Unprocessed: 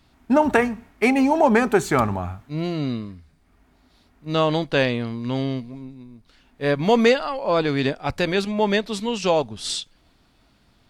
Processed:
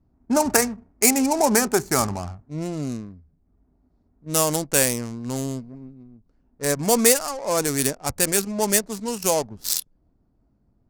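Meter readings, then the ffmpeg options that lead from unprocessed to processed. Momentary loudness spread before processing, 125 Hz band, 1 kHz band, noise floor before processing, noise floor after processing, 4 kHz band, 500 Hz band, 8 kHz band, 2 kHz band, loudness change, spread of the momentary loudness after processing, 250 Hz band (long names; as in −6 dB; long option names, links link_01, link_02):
12 LU, −3.5 dB, −3.0 dB, −60 dBFS, −66 dBFS, 0.0 dB, −3.0 dB, +17.0 dB, −3.0 dB, 0.0 dB, 13 LU, −3.0 dB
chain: -af "adynamicsmooth=sensitivity=3.5:basefreq=500,aexciter=amount=10.2:drive=6.5:freq=5100,volume=-3dB"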